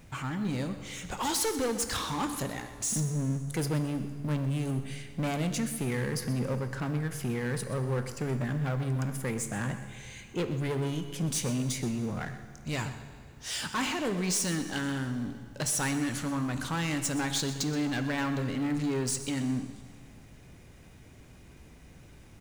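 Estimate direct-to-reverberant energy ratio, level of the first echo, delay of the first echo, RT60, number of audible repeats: 8.0 dB, -14.5 dB, 0.125 s, 2.0 s, 1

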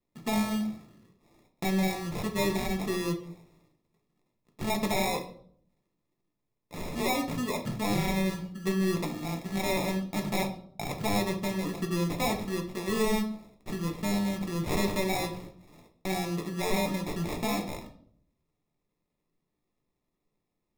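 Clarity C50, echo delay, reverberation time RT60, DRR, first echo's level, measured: 10.5 dB, none, 0.60 s, 3.0 dB, none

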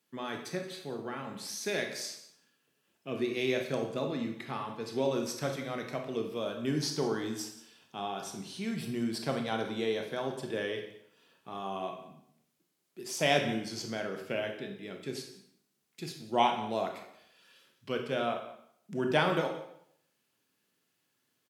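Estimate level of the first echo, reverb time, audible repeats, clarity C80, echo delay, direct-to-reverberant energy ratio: -18.0 dB, 0.70 s, 1, 9.0 dB, 0.177 s, 3.5 dB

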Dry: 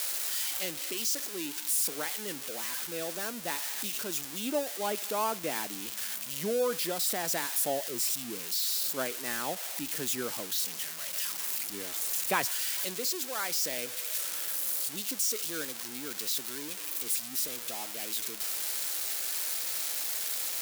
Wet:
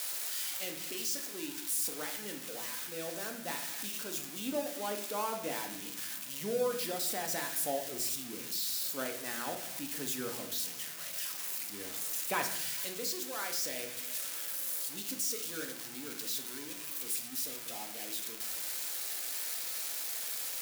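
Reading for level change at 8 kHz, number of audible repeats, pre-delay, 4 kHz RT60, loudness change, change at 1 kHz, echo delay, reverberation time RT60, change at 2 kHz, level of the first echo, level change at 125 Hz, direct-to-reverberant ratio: -4.5 dB, none, 4 ms, 0.55 s, -4.5 dB, -4.0 dB, none, 0.75 s, -4.0 dB, none, -3.0 dB, 3.0 dB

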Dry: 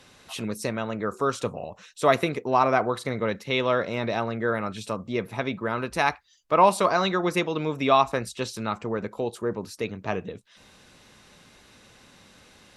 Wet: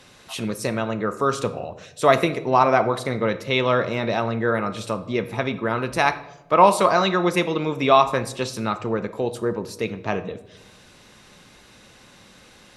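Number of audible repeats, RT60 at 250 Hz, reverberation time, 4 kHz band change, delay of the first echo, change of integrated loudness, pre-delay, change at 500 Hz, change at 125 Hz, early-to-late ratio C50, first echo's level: none, 1.2 s, 1.0 s, +4.0 dB, none, +4.0 dB, 6 ms, +4.0 dB, +4.5 dB, 14.5 dB, none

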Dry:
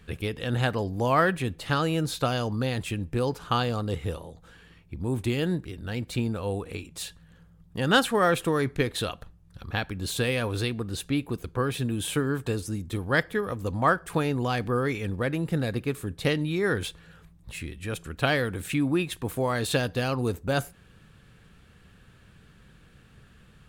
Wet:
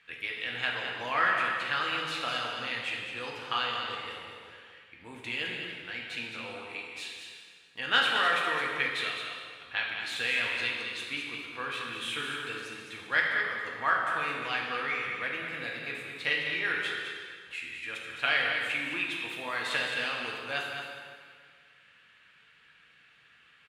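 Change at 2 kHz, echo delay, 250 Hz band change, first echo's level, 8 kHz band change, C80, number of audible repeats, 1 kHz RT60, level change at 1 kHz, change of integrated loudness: +3.5 dB, 0.212 s, -17.0 dB, -7.5 dB, -10.0 dB, 1.5 dB, 1, 1.9 s, -2.5 dB, -3.0 dB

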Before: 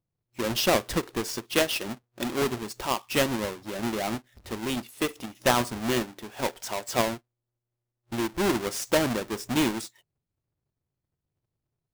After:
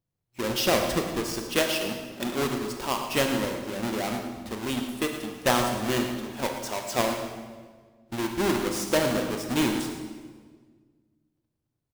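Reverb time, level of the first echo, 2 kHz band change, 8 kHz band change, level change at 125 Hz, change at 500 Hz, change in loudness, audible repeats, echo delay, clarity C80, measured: 1.5 s, -12.0 dB, +0.5 dB, +0.5 dB, +1.0 dB, +1.0 dB, +0.5 dB, 1, 0.112 s, 6.0 dB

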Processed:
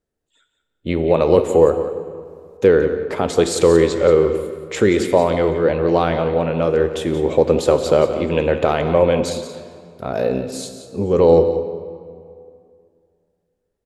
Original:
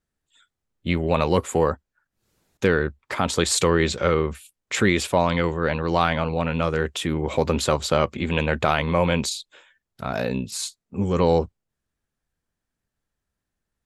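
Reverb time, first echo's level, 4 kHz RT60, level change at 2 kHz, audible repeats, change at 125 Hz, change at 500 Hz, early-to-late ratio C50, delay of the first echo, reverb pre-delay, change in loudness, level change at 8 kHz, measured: 2.3 s, -12.0 dB, 1.5 s, -2.0 dB, 1, +1.0 dB, +9.0 dB, 8.0 dB, 0.177 s, 16 ms, +6.0 dB, -2.5 dB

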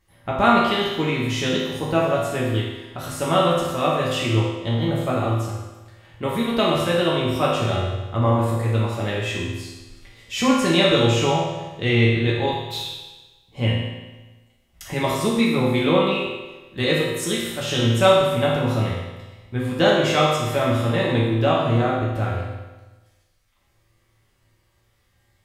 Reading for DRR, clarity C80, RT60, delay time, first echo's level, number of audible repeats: -6.0 dB, 3.0 dB, 1.2 s, none, none, none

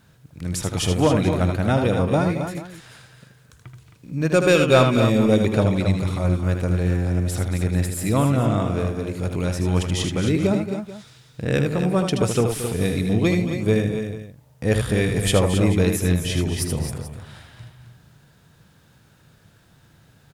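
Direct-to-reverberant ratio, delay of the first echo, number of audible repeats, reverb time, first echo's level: none, 78 ms, 4, none, -6.5 dB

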